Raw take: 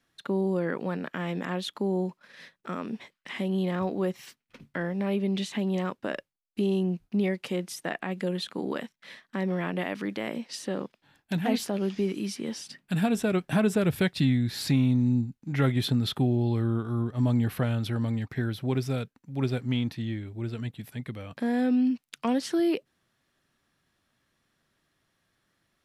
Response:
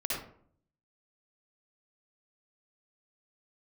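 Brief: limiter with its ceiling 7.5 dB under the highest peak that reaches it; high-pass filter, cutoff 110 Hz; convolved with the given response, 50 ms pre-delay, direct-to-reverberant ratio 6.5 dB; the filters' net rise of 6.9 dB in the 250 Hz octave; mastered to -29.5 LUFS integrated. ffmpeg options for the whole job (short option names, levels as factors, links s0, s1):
-filter_complex "[0:a]highpass=110,equalizer=f=250:t=o:g=8.5,alimiter=limit=0.158:level=0:latency=1,asplit=2[s0][s1];[1:a]atrim=start_sample=2205,adelay=50[s2];[s1][s2]afir=irnorm=-1:irlink=0,volume=0.251[s3];[s0][s3]amix=inputs=2:normalize=0,volume=0.631"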